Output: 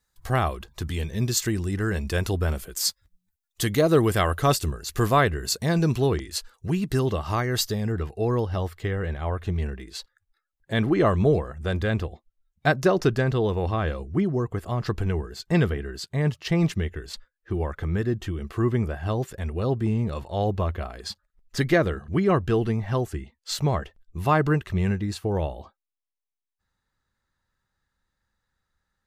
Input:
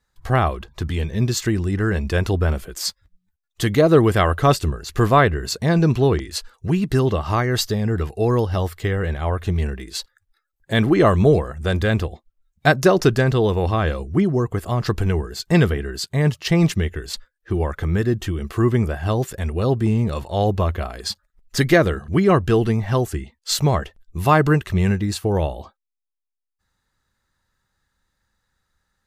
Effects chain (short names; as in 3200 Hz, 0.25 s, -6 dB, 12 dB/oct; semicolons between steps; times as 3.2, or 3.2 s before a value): high shelf 5400 Hz +11 dB, from 6.06 s +6 dB, from 7.92 s -6 dB; gain -5.5 dB